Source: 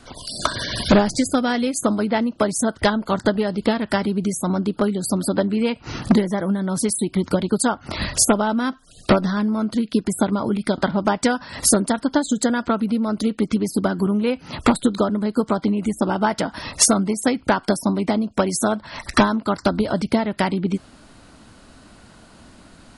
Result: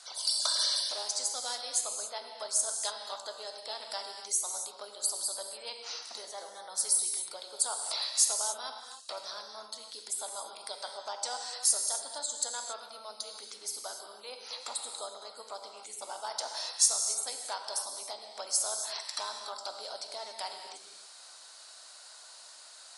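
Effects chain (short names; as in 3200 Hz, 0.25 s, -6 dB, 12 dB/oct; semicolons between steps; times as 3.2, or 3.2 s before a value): dynamic EQ 1800 Hz, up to -8 dB, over -39 dBFS, Q 1.2; reverse; compressor, threshold -25 dBFS, peak gain reduction 14 dB; reverse; HPF 640 Hz 24 dB/oct; band shelf 6200 Hz +12.5 dB; non-linear reverb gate 0.31 s flat, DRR 3 dB; gain -8 dB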